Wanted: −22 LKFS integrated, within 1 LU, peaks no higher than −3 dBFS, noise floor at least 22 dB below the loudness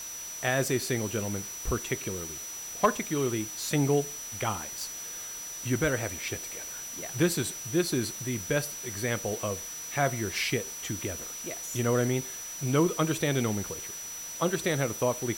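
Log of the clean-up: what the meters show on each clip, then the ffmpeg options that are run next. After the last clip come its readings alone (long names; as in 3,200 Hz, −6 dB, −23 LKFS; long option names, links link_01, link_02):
interfering tone 5,900 Hz; level of the tone −38 dBFS; background noise floor −40 dBFS; target noise floor −52 dBFS; integrated loudness −30.0 LKFS; sample peak −11.5 dBFS; target loudness −22.0 LKFS
→ -af "bandreject=frequency=5900:width=30"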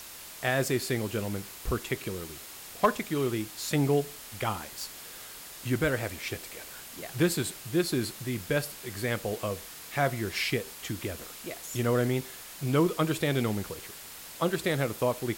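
interfering tone none found; background noise floor −45 dBFS; target noise floor −53 dBFS
→ -af "afftdn=noise_reduction=8:noise_floor=-45"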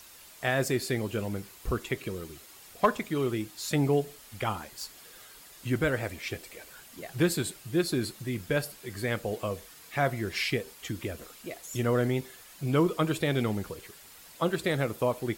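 background noise floor −52 dBFS; target noise floor −53 dBFS
→ -af "afftdn=noise_reduction=6:noise_floor=-52"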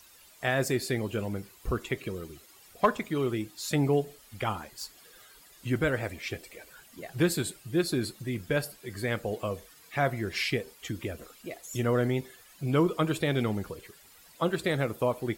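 background noise floor −56 dBFS; integrated loudness −30.5 LKFS; sample peak −12.0 dBFS; target loudness −22.0 LKFS
→ -af "volume=8.5dB"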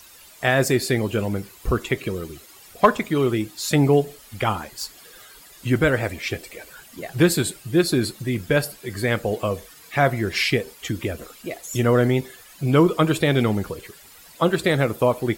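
integrated loudness −22.0 LKFS; sample peak −3.5 dBFS; background noise floor −47 dBFS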